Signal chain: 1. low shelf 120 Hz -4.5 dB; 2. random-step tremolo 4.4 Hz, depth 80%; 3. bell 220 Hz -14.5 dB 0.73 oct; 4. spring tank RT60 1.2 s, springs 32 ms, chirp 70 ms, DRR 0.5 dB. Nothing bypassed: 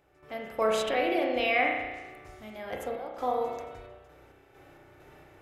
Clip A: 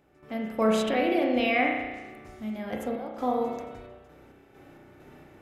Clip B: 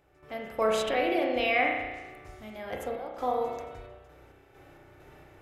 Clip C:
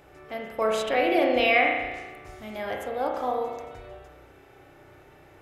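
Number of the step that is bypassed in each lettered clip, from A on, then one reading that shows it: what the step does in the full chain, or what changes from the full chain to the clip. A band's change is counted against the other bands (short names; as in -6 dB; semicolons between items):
3, 250 Hz band +8.5 dB; 1, 125 Hz band +2.0 dB; 2, momentary loudness spread change +1 LU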